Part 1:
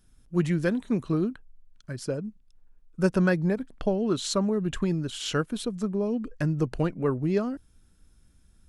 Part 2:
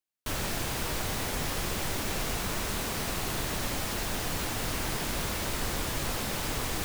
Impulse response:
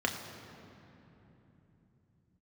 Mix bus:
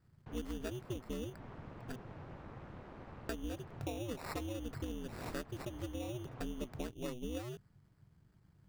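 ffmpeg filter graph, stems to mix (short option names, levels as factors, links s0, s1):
-filter_complex "[0:a]bandreject=f=5300:w=12,acrusher=samples=14:mix=1:aa=0.000001,volume=0.531,asplit=3[s0][s1][s2];[s0]atrim=end=1.96,asetpts=PTS-STARTPTS,afade=t=out:st=1.956:d=0.004:c=hsin[s3];[s1]atrim=start=1.96:end=3.29,asetpts=PTS-STARTPTS,volume=0[s4];[s2]atrim=start=3.29,asetpts=PTS-STARTPTS,afade=t=in:d=0.004:c=hsin[s5];[s3][s4][s5]concat=n=3:v=0:a=1[s6];[1:a]lowpass=1300,volume=0.211[s7];[s6][s7]amix=inputs=2:normalize=0,aeval=exprs='val(0)*sin(2*PI*120*n/s)':c=same,acompressor=threshold=0.0112:ratio=3"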